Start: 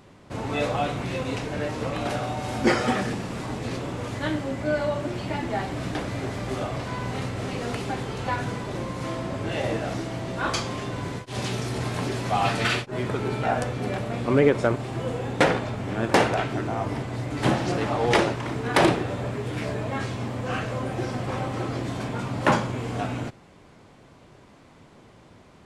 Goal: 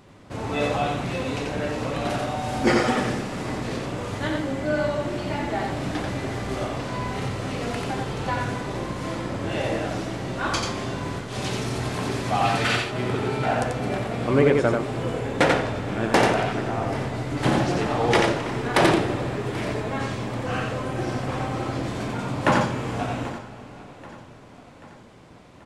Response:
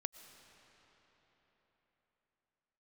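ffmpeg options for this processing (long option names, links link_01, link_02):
-filter_complex "[0:a]aecho=1:1:785|1570|2355|3140|3925:0.112|0.0617|0.0339|0.0187|0.0103,asplit=2[link_01][link_02];[1:a]atrim=start_sample=2205,adelay=89[link_03];[link_02][link_03]afir=irnorm=-1:irlink=0,volume=-1dB[link_04];[link_01][link_04]amix=inputs=2:normalize=0"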